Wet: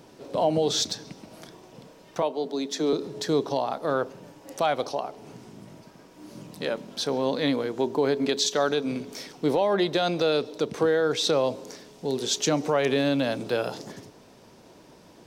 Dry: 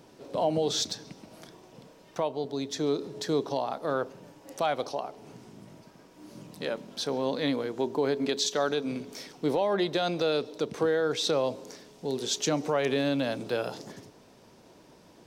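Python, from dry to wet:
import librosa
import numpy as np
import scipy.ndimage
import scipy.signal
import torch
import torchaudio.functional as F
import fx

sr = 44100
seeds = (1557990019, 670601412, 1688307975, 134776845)

y = fx.steep_highpass(x, sr, hz=160.0, slope=72, at=(2.22, 2.93))
y = F.gain(torch.from_numpy(y), 3.5).numpy()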